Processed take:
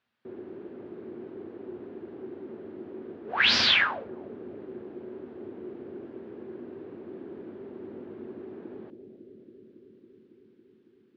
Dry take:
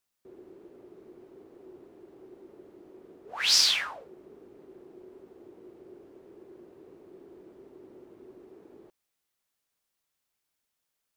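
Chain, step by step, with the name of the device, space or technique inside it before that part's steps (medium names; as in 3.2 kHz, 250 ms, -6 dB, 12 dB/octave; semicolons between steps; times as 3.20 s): analogue delay pedal into a guitar amplifier (bucket-brigade echo 276 ms, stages 1024, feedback 81%, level -9 dB; valve stage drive 14 dB, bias 0.25; cabinet simulation 84–3600 Hz, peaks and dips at 100 Hz +7 dB, 230 Hz +9 dB, 1.6 kHz +5 dB); trim +8 dB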